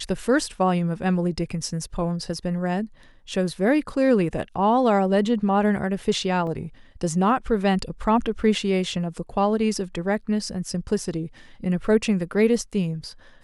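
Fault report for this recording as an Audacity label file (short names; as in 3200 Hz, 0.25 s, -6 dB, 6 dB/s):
6.470000	6.470000	gap 2.5 ms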